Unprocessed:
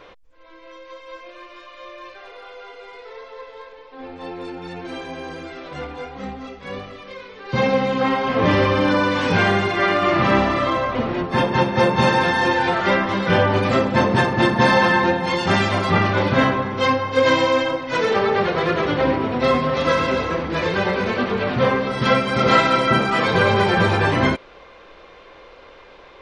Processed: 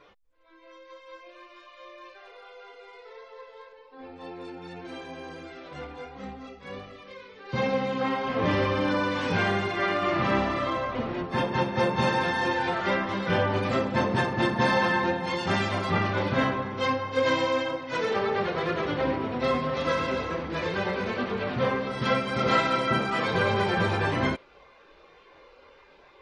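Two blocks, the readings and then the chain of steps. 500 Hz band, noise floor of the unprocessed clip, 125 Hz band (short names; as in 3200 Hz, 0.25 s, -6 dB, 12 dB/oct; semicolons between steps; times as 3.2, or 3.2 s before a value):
-8.0 dB, -45 dBFS, -8.0 dB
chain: spectral noise reduction 8 dB; gain -8 dB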